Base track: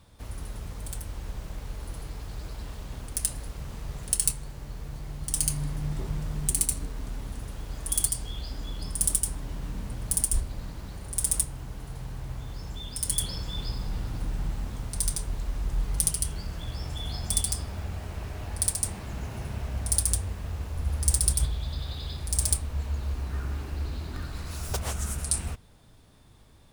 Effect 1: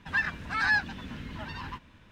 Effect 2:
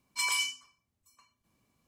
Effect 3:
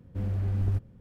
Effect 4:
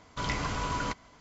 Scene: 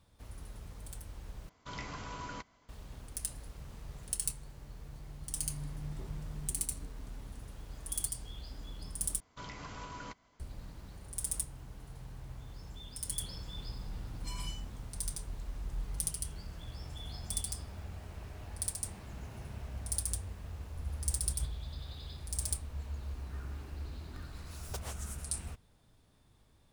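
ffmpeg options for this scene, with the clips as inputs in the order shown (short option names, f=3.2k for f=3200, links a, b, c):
-filter_complex "[4:a]asplit=2[a][b];[0:a]volume=-10dB[c];[b]alimiter=limit=-22.5dB:level=0:latency=1:release=160[d];[2:a]aecho=1:1:5:0.78[e];[c]asplit=3[f][g][h];[f]atrim=end=1.494[i];[a]atrim=end=1.2,asetpts=PTS-STARTPTS,volume=-11dB[j];[g]atrim=start=2.686:end=9.204[k];[d]atrim=end=1.2,asetpts=PTS-STARTPTS,volume=-12dB[l];[h]atrim=start=10.396[m];[e]atrim=end=1.87,asetpts=PTS-STARTPTS,volume=-17.5dB,afade=t=in:d=0.004:c=hsin,afade=t=out:st=1.866:d=0.004:c=hsin,adelay=14080[n];[i][j]acrossfade=d=0.004:c1=hsin:c2=hsin[o];[o][k]acrossfade=d=0.004:c1=hsin:c2=hsin[p];[p][l]acrossfade=d=0.004:c1=hsin:c2=hsin[q];[q][m]acrossfade=d=0.004:c1=hsin:c2=hsin[r];[r][n]amix=inputs=2:normalize=0"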